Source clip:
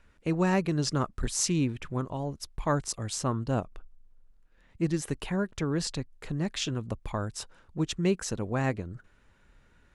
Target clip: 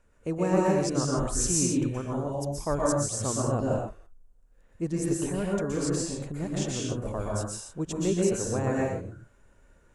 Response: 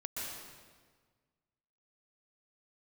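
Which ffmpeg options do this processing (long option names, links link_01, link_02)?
-filter_complex "[0:a]equalizer=frequency=500:width_type=o:width=1:gain=6,equalizer=frequency=2000:width_type=o:width=1:gain=-4,equalizer=frequency=4000:width_type=o:width=1:gain=-7,equalizer=frequency=8000:width_type=o:width=1:gain=8[link_01];[1:a]atrim=start_sample=2205,afade=type=out:start_time=0.35:duration=0.01,atrim=end_sample=15876[link_02];[link_01][link_02]afir=irnorm=-1:irlink=0"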